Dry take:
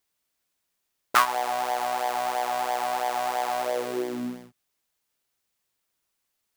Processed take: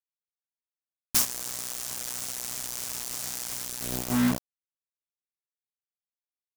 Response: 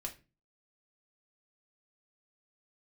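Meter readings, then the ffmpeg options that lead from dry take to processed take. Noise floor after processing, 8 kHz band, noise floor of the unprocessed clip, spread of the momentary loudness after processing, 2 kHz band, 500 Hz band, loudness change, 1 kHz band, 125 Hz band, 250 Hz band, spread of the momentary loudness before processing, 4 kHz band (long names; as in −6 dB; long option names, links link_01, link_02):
below −85 dBFS, +9.5 dB, −79 dBFS, 8 LU, −9.0 dB, −14.0 dB, −2.0 dB, −18.5 dB, +13.5 dB, +5.5 dB, 8 LU, +0.5 dB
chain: -filter_complex "[0:a]firequalizer=gain_entry='entry(250,0);entry(380,-23);entry(750,-28);entry(3700,-21);entry(5500,6)':delay=0.05:min_phase=1,asplit=2[link_01][link_02];[1:a]atrim=start_sample=2205[link_03];[link_02][link_03]afir=irnorm=-1:irlink=0,volume=-8.5dB[link_04];[link_01][link_04]amix=inputs=2:normalize=0,asubboost=boost=11.5:cutoff=140,acrusher=bits=4:mix=0:aa=0.000001,aeval=exprs='(mod(3.35*val(0)+1,2)-1)/3.35':channel_layout=same,volume=2.5dB"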